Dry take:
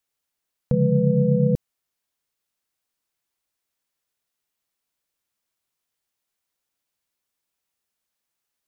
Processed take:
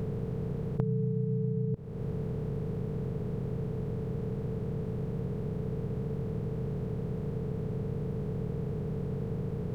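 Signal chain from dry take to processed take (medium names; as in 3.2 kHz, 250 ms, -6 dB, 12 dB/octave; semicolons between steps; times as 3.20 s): spectral levelling over time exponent 0.2; compression 10:1, threshold -27 dBFS, peak gain reduction 14.5 dB; tape speed -11%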